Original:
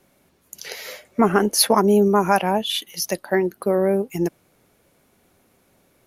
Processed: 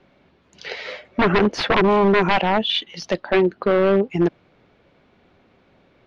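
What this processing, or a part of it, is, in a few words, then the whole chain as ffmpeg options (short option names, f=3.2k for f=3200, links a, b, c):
synthesiser wavefolder: -af "aeval=exprs='0.188*(abs(mod(val(0)/0.188+3,4)-2)-1)':c=same,lowpass=f=3.9k:w=0.5412,lowpass=f=3.9k:w=1.3066,volume=4.5dB"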